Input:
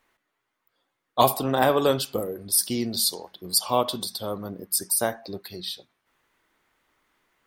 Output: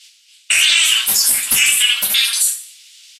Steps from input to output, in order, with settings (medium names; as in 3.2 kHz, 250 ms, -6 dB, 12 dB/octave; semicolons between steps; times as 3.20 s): spectral peaks clipped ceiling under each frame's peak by 14 dB; in parallel at +2 dB: compression 10:1, threshold -33 dBFS, peak gain reduction 20 dB; on the sum: Chebyshev high-pass 1.2 kHz, order 3; overload inside the chain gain 15.5 dB; distance through air 230 m; feedback delay 191 ms, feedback 36%, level -14.5 dB; two-slope reverb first 0.71 s, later 2.2 s, from -26 dB, DRR -4 dB; speed mistake 33 rpm record played at 78 rpm; loudness maximiser +22.5 dB; trim -3 dB; Vorbis 48 kbps 44.1 kHz